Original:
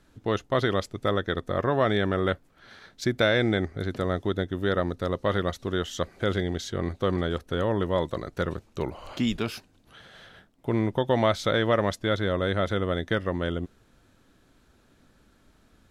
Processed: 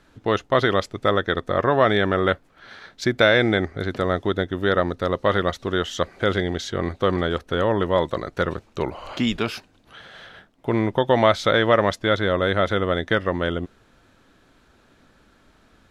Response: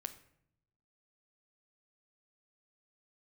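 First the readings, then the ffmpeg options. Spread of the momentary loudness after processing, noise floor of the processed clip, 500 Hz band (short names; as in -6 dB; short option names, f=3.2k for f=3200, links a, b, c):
10 LU, -58 dBFS, +5.5 dB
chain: -af "lowpass=f=3.7k:p=1,lowshelf=f=410:g=-7,volume=8.5dB"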